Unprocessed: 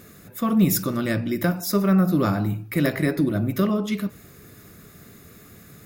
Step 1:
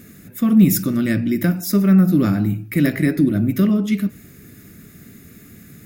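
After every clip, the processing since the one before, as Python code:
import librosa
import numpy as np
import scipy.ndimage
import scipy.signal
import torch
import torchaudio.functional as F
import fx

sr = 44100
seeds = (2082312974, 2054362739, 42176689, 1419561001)

y = fx.graphic_eq(x, sr, hz=(250, 500, 1000, 2000, 4000), db=(6, -5, -10, 3, -4))
y = y * 10.0 ** (3.0 / 20.0)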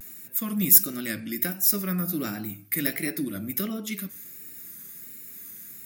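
y = fx.riaa(x, sr, side='recording')
y = fx.vibrato(y, sr, rate_hz=1.4, depth_cents=88.0)
y = y * 10.0 ** (-8.0 / 20.0)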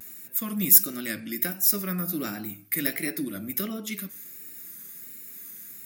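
y = fx.highpass(x, sr, hz=170.0, slope=6)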